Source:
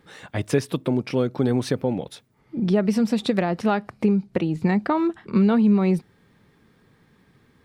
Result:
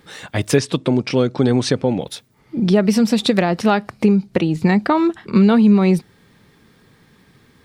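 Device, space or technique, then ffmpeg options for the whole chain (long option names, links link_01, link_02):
presence and air boost: -filter_complex "[0:a]equalizer=frequency=4700:width_type=o:width=1.9:gain=4.5,highshelf=frequency=9100:gain=6.5,asettb=1/sr,asplit=3[link_01][link_02][link_03];[link_01]atrim=end=0.564[link_04];[link_02]atrim=start=0.56:end=2.01,asetpts=PTS-STARTPTS,afade=type=in:duration=0.004:curve=qsin,afade=type=out:start_time=1.446:duration=0.004:curve=qsin,lowpass=frequency=8500:width=0.5412,lowpass=frequency=8500:width=1.3066[link_05];[link_03]atrim=start=2.006[link_06];[link_04][link_05]acrossfade=duration=0.004:curve1=hsin:curve2=qsin[link_07];[link_07][link_06]acrossfade=duration=0.004:curve1=qsin:curve2=hsin,volume=5.5dB"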